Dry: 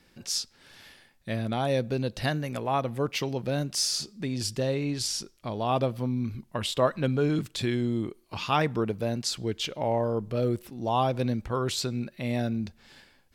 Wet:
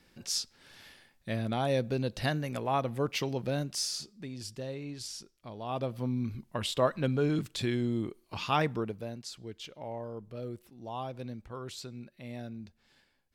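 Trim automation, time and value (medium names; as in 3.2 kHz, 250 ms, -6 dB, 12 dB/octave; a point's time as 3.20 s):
3.46 s -2.5 dB
4.36 s -11 dB
5.61 s -11 dB
6.08 s -3 dB
8.65 s -3 dB
9.22 s -13 dB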